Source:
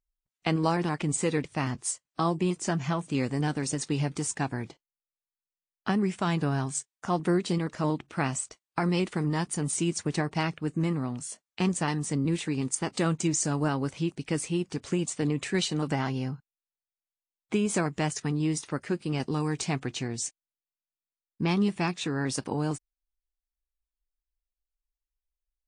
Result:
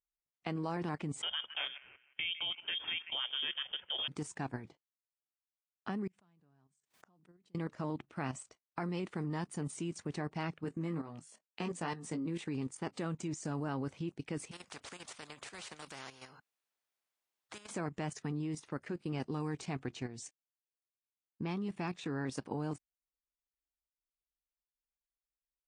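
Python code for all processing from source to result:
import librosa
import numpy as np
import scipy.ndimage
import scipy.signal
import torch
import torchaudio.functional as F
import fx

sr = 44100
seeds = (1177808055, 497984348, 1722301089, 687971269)

y = fx.chain(x, sr, fx.echo_wet_bandpass(ms=156, feedback_pct=38, hz=910.0, wet_db=-9),
    fx.freq_invert(carrier_hz=3400), at=(1.22, 4.08))
y = fx.chain(y, sr, fx.peak_eq(hz=190.0, db=5.0, octaves=0.57),
    fx.gate_flip(shuts_db=-31.0, range_db=-34),
    fx.pre_swell(db_per_s=94.0), at=(6.07, 7.55))
y = fx.chain(y, sr, fx.highpass(hz=200.0, slope=6),
    fx.doubler(ms=18.0, db=-5.0), at=(10.64, 12.43))
y = fx.chain(y, sr, fx.low_shelf(hz=280.0, db=-11.0),
    fx.spectral_comp(ratio=4.0), at=(14.51, 17.71))
y = fx.highpass(y, sr, hz=90.0, slope=6)
y = fx.high_shelf(y, sr, hz=3600.0, db=-9.0)
y = fx.level_steps(y, sr, step_db=11)
y = F.gain(torch.from_numpy(y), -3.5).numpy()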